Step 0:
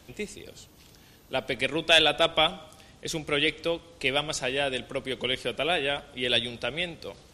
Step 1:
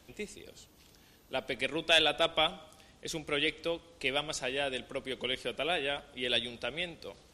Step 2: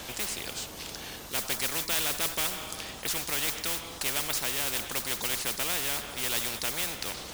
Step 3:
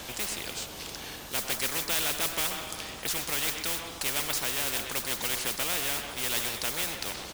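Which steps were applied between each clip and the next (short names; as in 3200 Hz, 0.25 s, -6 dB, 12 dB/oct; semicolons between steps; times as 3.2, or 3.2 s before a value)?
bell 120 Hz -4.5 dB 0.77 oct; gain -5.5 dB
modulation noise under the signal 15 dB; spectral compressor 4:1
speakerphone echo 0.13 s, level -7 dB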